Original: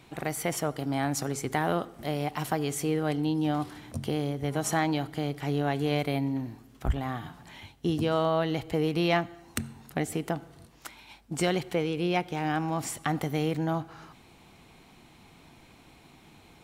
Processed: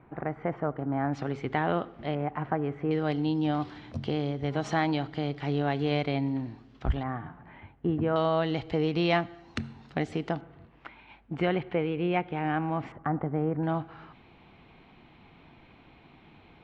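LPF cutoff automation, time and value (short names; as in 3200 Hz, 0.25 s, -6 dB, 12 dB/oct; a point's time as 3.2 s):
LPF 24 dB/oct
1700 Hz
from 1.13 s 3300 Hz
from 2.15 s 1900 Hz
from 2.91 s 4600 Hz
from 7.03 s 2000 Hz
from 8.16 s 4800 Hz
from 10.41 s 2700 Hz
from 12.92 s 1500 Hz
from 13.63 s 3300 Hz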